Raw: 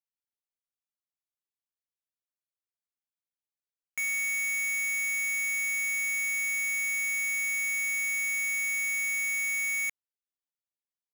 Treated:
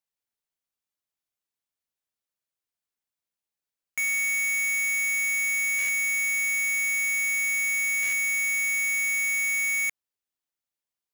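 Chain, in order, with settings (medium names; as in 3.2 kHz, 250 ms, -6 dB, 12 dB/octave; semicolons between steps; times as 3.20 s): buffer glitch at 5.78/8.02 s, samples 512, times 8; trim +4 dB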